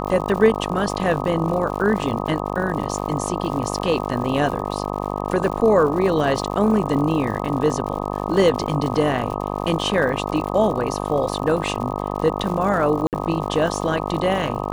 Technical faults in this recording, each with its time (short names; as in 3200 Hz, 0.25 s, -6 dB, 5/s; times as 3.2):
buzz 50 Hz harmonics 25 -26 dBFS
crackle 120/s -29 dBFS
13.07–13.13 gap 58 ms